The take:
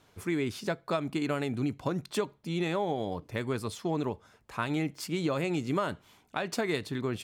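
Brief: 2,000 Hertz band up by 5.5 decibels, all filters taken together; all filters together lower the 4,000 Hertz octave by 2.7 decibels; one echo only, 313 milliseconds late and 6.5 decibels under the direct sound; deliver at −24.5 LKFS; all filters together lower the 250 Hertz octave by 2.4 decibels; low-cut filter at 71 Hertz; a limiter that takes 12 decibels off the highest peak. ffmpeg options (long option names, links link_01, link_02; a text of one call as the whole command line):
ffmpeg -i in.wav -af "highpass=71,equalizer=frequency=250:width_type=o:gain=-3.5,equalizer=frequency=2000:width_type=o:gain=8.5,equalizer=frequency=4000:width_type=o:gain=-6.5,alimiter=level_in=1dB:limit=-24dB:level=0:latency=1,volume=-1dB,aecho=1:1:313:0.473,volume=11.5dB" out.wav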